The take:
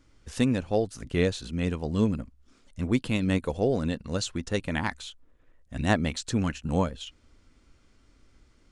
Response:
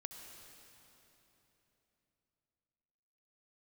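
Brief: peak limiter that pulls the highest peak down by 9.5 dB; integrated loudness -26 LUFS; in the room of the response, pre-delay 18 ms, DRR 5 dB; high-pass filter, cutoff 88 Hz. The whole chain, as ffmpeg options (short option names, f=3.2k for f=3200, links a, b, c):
-filter_complex "[0:a]highpass=88,alimiter=limit=-17.5dB:level=0:latency=1,asplit=2[a][b];[1:a]atrim=start_sample=2205,adelay=18[c];[b][c]afir=irnorm=-1:irlink=0,volume=-1.5dB[d];[a][d]amix=inputs=2:normalize=0,volume=4dB"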